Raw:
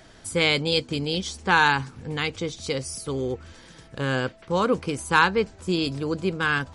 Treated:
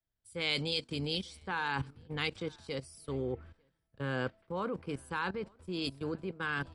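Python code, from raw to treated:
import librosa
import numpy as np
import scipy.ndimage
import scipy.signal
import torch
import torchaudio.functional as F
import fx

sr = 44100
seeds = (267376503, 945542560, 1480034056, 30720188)

p1 = fx.peak_eq(x, sr, hz=6500.0, db=-11.5, octaves=0.29)
p2 = fx.level_steps(p1, sr, step_db=15)
p3 = p2 + fx.echo_single(p2, sr, ms=898, db=-24.0, dry=0)
p4 = fx.band_widen(p3, sr, depth_pct=100)
y = F.gain(torch.from_numpy(p4), -4.5).numpy()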